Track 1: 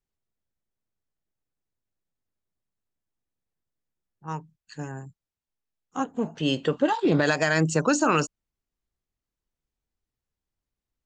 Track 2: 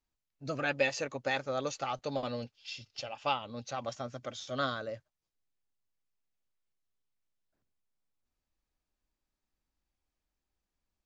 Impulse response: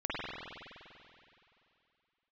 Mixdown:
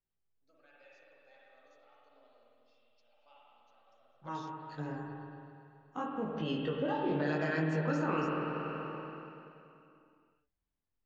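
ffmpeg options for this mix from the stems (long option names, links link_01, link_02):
-filter_complex "[0:a]equalizer=frequency=7700:width_type=o:width=1.4:gain=-12.5,flanger=delay=18.5:depth=4:speed=0.79,volume=-6dB,asplit=3[link_01][link_02][link_03];[link_02]volume=-3.5dB[link_04];[1:a]highpass=350,volume=-12dB,asplit=2[link_05][link_06];[link_06]volume=-23.5dB[link_07];[link_03]apad=whole_len=487676[link_08];[link_05][link_08]sidechaingate=range=-33dB:threshold=-55dB:ratio=16:detection=peak[link_09];[2:a]atrim=start_sample=2205[link_10];[link_04][link_07]amix=inputs=2:normalize=0[link_11];[link_11][link_10]afir=irnorm=-1:irlink=0[link_12];[link_01][link_09][link_12]amix=inputs=3:normalize=0,lowpass=frequency=6500:width=0.5412,lowpass=frequency=6500:width=1.3066,acompressor=threshold=-35dB:ratio=2"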